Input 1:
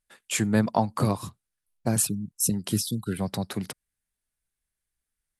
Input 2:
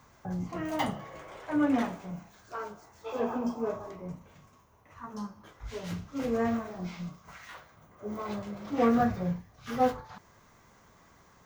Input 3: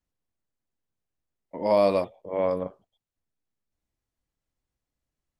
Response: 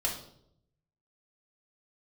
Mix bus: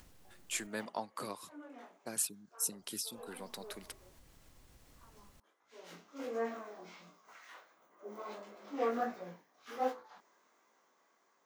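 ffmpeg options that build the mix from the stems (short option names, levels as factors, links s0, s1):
-filter_complex "[0:a]highpass=460,equalizer=f=740:w=1.5:g=-6.5,adelay=200,volume=0.355[s0];[1:a]highpass=f=290:w=0.5412,highpass=f=290:w=1.3066,dynaudnorm=f=380:g=9:m=1.78,flanger=delay=17.5:depth=7.1:speed=1.4,volume=0.335,afade=t=in:st=5.68:d=0.28:silence=0.251189[s1];[2:a]acompressor=mode=upward:threshold=0.0141:ratio=2.5,volume=0.794,asplit=3[s2][s3][s4];[s2]atrim=end=0.67,asetpts=PTS-STARTPTS,afade=t=out:st=0.666:d=0.004:c=hsin[s5];[s3]atrim=start=0.67:end=2.72,asetpts=PTS-STARTPTS,volume=0[s6];[s4]atrim=start=2.72,asetpts=PTS-STARTPTS,afade=t=in:d=0.004:c=hsin[s7];[s5][s6][s7]concat=n=3:v=0:a=1[s8];[s0][s1][s8]amix=inputs=3:normalize=0"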